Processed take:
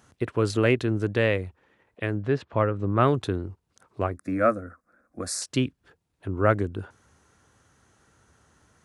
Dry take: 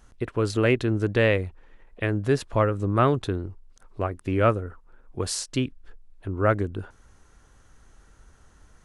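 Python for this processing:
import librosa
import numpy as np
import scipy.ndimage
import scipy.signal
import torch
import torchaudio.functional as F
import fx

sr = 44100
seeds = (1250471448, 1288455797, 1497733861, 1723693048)

y = fx.lowpass(x, sr, hz=3200.0, slope=12, at=(2.15, 2.99), fade=0.02)
y = fx.fixed_phaser(y, sr, hz=610.0, stages=8, at=(4.16, 5.42))
y = fx.rider(y, sr, range_db=4, speed_s=2.0)
y = scipy.signal.sosfilt(scipy.signal.butter(4, 80.0, 'highpass', fs=sr, output='sos'), y)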